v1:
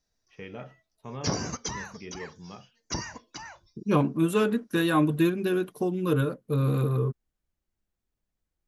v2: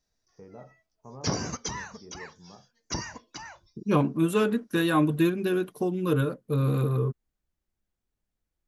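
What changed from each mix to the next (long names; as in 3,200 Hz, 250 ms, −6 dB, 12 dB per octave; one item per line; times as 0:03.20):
first voice: add transistor ladder low-pass 1,200 Hz, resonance 30%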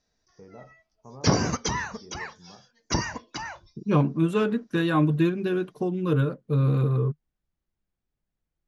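second voice: add parametric band 150 Hz +5.5 dB 0.4 octaves
background +8.0 dB
master: add high-frequency loss of the air 78 metres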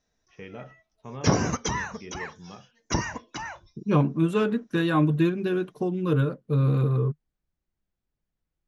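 first voice: remove transistor ladder low-pass 1,200 Hz, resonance 30%
background: add parametric band 4,600 Hz −11.5 dB 0.2 octaves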